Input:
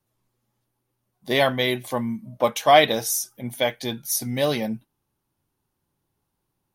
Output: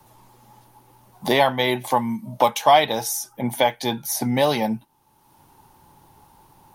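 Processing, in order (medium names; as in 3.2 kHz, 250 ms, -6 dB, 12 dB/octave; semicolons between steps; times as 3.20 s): peaking EQ 880 Hz +14.5 dB 0.4 oct; three bands compressed up and down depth 70%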